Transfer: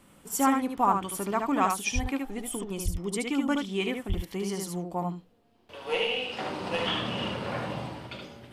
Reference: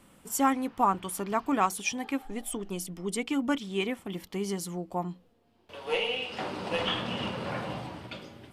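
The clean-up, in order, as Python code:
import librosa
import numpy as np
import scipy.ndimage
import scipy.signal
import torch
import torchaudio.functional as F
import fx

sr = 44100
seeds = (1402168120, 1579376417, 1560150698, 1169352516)

y = fx.highpass(x, sr, hz=140.0, slope=24, at=(1.94, 2.06), fade=0.02)
y = fx.highpass(y, sr, hz=140.0, slope=24, at=(2.84, 2.96), fade=0.02)
y = fx.highpass(y, sr, hz=140.0, slope=24, at=(4.08, 4.2), fade=0.02)
y = fx.fix_echo_inverse(y, sr, delay_ms=74, level_db=-4.5)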